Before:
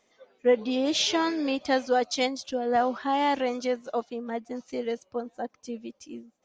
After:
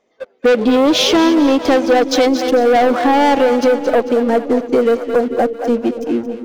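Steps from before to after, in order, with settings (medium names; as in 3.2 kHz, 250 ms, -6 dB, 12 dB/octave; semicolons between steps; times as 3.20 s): treble shelf 5.1 kHz -9 dB; in parallel at -11 dB: wavefolder -23 dBFS; on the sum: peaking EQ 420 Hz +8 dB 2 oct; waveshaping leveller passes 3; two-band feedback delay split 450 Hz, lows 575 ms, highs 223 ms, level -11 dB; compression 2.5:1, threshold -16 dBFS, peak gain reduction 6.5 dB; trim +4 dB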